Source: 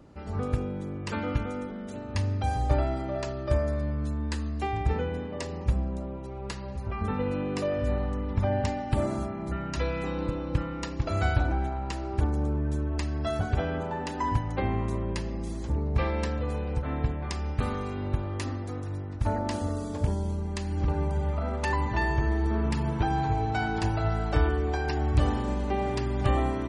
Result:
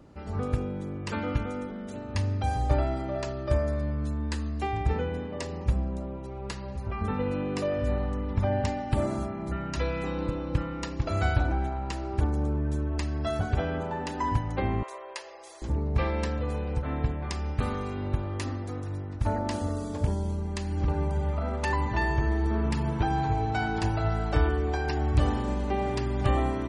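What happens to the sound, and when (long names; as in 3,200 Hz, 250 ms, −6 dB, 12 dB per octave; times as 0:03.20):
0:14.83–0:15.62: inverse Chebyshev high-pass filter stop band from 260 Hz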